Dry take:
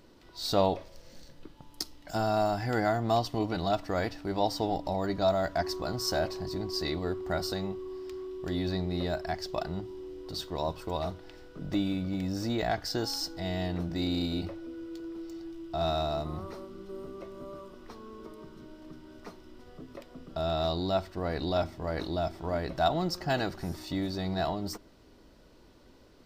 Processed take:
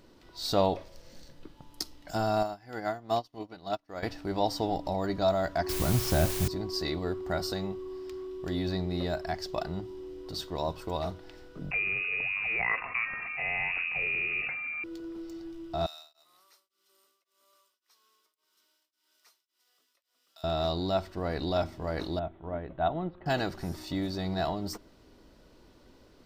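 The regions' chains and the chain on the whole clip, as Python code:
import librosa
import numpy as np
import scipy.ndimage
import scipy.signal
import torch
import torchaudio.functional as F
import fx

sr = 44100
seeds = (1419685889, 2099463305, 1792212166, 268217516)

y = fx.chain(x, sr, fx.low_shelf(hz=120.0, db=-10.0),
    fx.notch(hz=7800.0, q=9.9),
    fx.upward_expand(threshold_db=-43.0, expansion=2.5), at=(2.43, 4.03))
y = fx.chain(y, sr, fx.bass_treble(bass_db=13, treble_db=-8),
    fx.quant_dither(seeds[0], bits=6, dither='triangular'), at=(5.69, 6.48))
y = fx.chain(y, sr, fx.tilt_eq(slope=2.0),
    fx.freq_invert(carrier_hz=2700),
    fx.env_flatten(amount_pct=50), at=(11.71, 14.84))
y = fx.chain(y, sr, fx.highpass(hz=980.0, slope=6),
    fx.differentiator(),
    fx.tremolo_abs(hz=1.8), at=(15.86, 20.44))
y = fx.chain(y, sr, fx.steep_lowpass(hz=3700.0, slope=72),
    fx.high_shelf(hz=2100.0, db=-10.5),
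    fx.upward_expand(threshold_db=-38.0, expansion=1.5), at=(22.19, 23.26))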